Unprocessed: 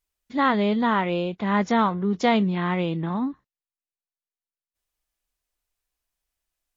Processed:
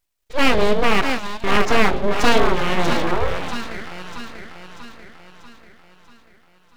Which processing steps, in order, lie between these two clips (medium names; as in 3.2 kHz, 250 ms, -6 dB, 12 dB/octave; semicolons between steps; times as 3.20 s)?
1.01–1.44 s: differentiator; two-band feedback delay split 400 Hz, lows 86 ms, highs 640 ms, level -6 dB; full-wave rectifier; trim +7.5 dB